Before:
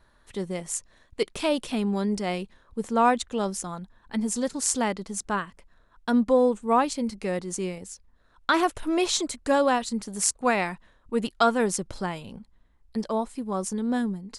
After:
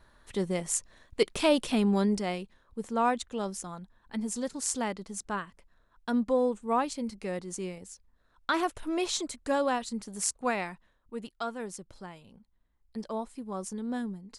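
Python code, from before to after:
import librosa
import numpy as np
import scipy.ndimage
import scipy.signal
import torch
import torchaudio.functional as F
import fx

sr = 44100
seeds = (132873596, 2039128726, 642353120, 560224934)

y = fx.gain(x, sr, db=fx.line((2.02, 1.0), (2.42, -6.0), (10.46, -6.0), (11.36, -14.0), (12.36, -14.0), (13.1, -7.5)))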